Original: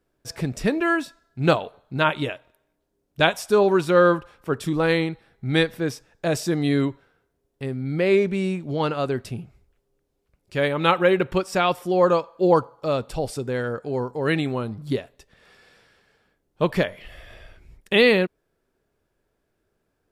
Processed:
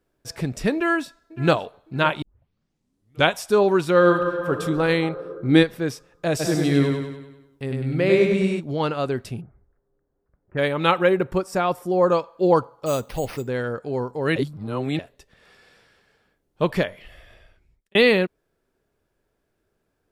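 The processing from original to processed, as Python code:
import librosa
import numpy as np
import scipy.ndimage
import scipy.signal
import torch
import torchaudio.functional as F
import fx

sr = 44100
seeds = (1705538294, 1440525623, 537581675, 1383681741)

y = fx.echo_throw(x, sr, start_s=0.74, length_s=0.91, ms=560, feedback_pct=30, wet_db=-17.5)
y = fx.reverb_throw(y, sr, start_s=3.97, length_s=0.55, rt60_s=2.8, drr_db=3.5)
y = fx.peak_eq(y, sr, hz=fx.line((5.02, 840.0), (5.62, 250.0)), db=11.0, octaves=1.0, at=(5.02, 5.62), fade=0.02)
y = fx.echo_feedback(y, sr, ms=99, feedback_pct=51, wet_db=-3, at=(6.39, 8.59), fade=0.02)
y = fx.steep_lowpass(y, sr, hz=1800.0, slope=48, at=(9.4, 10.57), fade=0.02)
y = fx.peak_eq(y, sr, hz=3100.0, db=-9.5, octaves=1.4, at=(11.09, 12.12))
y = fx.resample_bad(y, sr, factor=6, down='none', up='hold', at=(12.86, 13.47))
y = fx.edit(y, sr, fx.tape_start(start_s=2.22, length_s=1.06),
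    fx.reverse_span(start_s=14.36, length_s=0.63),
    fx.fade_out_span(start_s=16.73, length_s=1.22), tone=tone)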